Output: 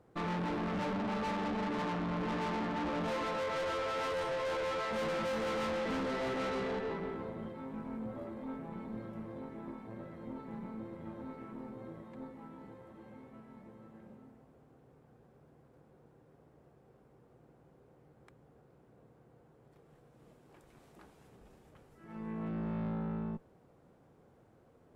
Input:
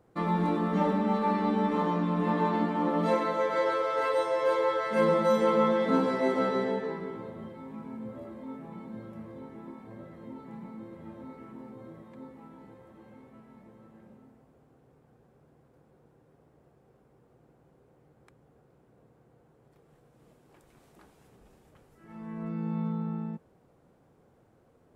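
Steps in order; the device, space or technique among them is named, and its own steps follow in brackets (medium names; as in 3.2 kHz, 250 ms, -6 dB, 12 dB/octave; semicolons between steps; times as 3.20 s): tube preamp driven hard (valve stage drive 36 dB, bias 0.6; treble shelf 6.8 kHz -4.5 dB); trim +2.5 dB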